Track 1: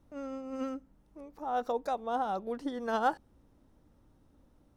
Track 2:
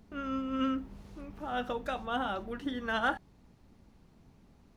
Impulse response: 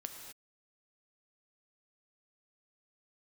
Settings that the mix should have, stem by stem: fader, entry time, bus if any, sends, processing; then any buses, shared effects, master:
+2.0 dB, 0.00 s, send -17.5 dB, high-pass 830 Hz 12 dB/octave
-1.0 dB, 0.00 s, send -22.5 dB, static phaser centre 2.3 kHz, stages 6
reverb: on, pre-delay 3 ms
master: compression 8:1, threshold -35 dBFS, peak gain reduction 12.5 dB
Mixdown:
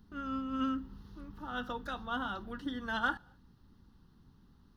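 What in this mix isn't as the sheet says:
stem 1 +2.0 dB -> -8.5 dB; master: missing compression 8:1, threshold -35 dBFS, peak gain reduction 12.5 dB

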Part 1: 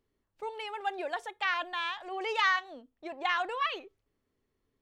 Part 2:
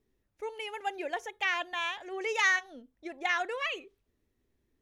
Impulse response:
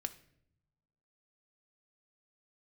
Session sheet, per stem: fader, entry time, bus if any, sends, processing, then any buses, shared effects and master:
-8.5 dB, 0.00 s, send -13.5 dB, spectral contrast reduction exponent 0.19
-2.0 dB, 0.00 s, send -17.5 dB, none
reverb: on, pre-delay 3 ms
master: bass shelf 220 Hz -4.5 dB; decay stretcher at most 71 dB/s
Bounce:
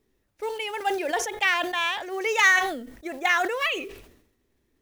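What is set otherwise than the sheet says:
stem 1 -8.5 dB -> -17.0 dB; stem 2 -2.0 dB -> +6.5 dB

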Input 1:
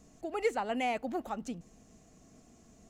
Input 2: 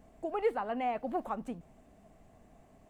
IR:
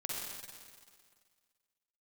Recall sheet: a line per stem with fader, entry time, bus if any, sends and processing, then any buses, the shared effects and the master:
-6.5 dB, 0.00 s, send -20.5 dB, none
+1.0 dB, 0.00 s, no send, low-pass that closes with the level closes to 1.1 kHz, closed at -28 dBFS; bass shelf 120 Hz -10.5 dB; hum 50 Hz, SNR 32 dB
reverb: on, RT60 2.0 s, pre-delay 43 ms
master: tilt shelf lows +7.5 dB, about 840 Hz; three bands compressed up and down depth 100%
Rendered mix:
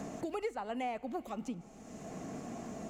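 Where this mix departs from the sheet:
stem 2 +1.0 dB -> -9.5 dB; master: missing tilt shelf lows +7.5 dB, about 840 Hz

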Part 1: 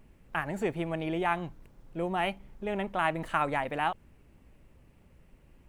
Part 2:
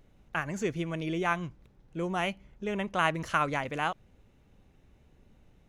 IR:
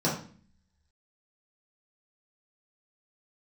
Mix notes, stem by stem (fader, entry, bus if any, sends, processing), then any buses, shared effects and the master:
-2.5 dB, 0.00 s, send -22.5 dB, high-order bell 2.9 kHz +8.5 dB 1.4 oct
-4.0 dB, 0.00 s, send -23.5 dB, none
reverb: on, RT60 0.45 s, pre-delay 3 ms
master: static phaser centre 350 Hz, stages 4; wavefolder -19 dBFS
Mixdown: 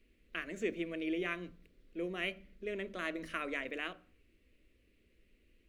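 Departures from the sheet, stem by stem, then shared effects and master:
stem 1 -2.5 dB -> -10.0 dB; stem 2 -4.0 dB -> -13.5 dB

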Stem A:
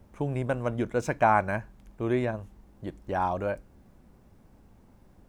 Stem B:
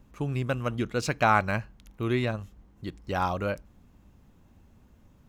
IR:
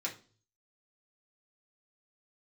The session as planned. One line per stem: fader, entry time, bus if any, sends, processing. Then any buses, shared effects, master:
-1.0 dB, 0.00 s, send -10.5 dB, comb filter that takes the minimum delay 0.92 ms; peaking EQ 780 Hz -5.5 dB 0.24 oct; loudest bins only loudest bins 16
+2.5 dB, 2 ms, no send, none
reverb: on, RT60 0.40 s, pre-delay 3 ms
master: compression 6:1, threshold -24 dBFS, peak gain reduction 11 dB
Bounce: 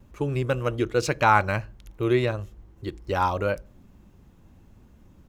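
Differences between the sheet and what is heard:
stem A: missing comb filter that takes the minimum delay 0.92 ms; master: missing compression 6:1, threshold -24 dBFS, peak gain reduction 11 dB

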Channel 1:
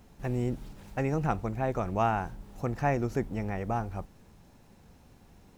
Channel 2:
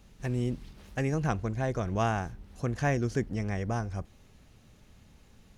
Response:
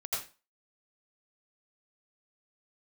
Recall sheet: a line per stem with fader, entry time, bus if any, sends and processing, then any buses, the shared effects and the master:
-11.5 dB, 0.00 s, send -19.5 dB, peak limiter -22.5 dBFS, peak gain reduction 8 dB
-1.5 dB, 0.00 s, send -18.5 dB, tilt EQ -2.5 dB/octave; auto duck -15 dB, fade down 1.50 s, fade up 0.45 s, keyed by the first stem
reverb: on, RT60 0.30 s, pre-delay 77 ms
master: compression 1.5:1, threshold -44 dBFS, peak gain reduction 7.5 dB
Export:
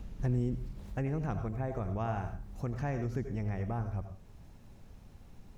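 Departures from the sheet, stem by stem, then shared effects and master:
stem 1 -11.5 dB -> -4.5 dB; stem 2 -1.5 dB -> +5.0 dB

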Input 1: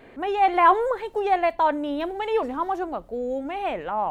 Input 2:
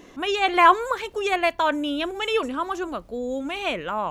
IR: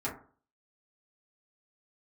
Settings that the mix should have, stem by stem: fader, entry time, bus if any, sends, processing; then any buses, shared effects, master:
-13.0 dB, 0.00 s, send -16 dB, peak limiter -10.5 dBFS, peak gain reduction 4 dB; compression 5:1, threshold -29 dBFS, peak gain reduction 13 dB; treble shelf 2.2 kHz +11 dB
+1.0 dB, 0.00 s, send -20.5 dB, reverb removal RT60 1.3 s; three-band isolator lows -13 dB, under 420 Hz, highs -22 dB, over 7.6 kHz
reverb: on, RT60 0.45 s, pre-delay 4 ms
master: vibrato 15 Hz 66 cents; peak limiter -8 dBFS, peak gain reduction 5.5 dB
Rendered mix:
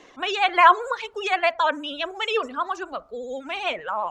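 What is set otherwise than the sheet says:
stem 1 -13.0 dB -> -24.5 dB; master: missing peak limiter -8 dBFS, peak gain reduction 5.5 dB

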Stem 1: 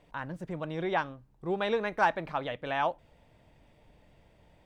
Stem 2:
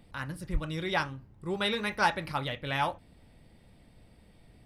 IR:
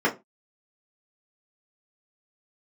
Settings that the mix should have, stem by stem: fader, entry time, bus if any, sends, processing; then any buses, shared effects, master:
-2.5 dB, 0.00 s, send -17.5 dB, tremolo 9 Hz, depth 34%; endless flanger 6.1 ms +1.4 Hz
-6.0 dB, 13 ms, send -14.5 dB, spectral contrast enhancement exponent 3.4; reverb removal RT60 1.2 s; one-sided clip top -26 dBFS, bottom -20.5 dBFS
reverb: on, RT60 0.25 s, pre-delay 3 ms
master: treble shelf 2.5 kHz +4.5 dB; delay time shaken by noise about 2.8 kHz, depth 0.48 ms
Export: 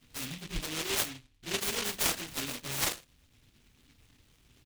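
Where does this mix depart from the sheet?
stem 2: missing spectral contrast enhancement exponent 3.4; master: missing treble shelf 2.5 kHz +4.5 dB

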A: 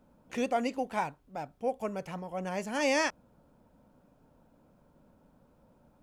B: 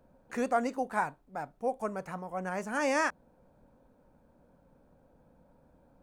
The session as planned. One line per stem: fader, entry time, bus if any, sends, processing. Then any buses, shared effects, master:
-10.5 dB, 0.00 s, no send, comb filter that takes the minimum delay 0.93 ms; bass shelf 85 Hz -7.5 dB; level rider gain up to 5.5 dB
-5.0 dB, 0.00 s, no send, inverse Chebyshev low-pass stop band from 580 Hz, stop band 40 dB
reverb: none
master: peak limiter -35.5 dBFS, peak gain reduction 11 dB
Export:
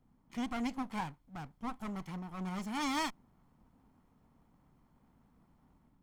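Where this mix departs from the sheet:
stem A: missing bass shelf 85 Hz -7.5 dB; master: missing peak limiter -35.5 dBFS, peak gain reduction 11 dB

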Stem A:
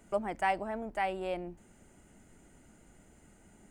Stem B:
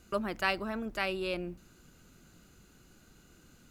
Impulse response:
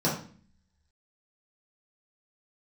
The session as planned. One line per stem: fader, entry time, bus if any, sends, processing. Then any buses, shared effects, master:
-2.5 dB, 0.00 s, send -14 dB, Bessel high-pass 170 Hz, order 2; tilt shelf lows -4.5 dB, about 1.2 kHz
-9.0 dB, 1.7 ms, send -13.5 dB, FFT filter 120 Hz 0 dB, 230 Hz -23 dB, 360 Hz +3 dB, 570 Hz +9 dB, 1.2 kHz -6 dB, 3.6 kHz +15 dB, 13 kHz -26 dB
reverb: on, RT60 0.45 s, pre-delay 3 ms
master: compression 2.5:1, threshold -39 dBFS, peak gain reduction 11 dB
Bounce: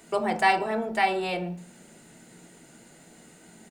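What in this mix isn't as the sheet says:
stem A -2.5 dB -> +6.5 dB; master: missing compression 2.5:1, threshold -39 dBFS, peak gain reduction 11 dB

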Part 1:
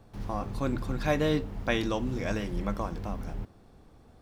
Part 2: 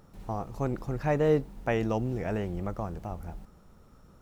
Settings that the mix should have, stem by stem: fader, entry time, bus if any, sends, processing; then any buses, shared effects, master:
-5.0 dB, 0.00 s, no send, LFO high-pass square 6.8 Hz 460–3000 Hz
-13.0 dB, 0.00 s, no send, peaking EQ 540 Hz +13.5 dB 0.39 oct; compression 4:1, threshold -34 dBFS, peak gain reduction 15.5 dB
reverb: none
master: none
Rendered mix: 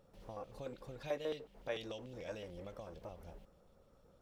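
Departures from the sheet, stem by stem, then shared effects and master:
stem 1 -5.0 dB -> -16.5 dB; stem 2: polarity flipped

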